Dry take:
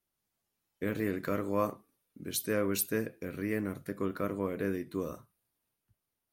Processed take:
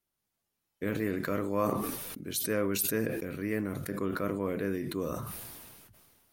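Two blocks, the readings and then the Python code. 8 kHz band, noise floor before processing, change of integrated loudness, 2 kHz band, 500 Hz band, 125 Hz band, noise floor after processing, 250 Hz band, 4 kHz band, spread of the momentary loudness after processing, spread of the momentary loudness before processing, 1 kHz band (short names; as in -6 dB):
+3.0 dB, under -85 dBFS, +1.5 dB, +2.0 dB, +1.5 dB, +2.5 dB, -84 dBFS, +2.0 dB, +3.0 dB, 9 LU, 8 LU, +2.5 dB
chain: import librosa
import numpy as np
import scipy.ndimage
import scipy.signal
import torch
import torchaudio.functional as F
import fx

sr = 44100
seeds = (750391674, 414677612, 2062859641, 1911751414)

y = fx.sustainer(x, sr, db_per_s=29.0)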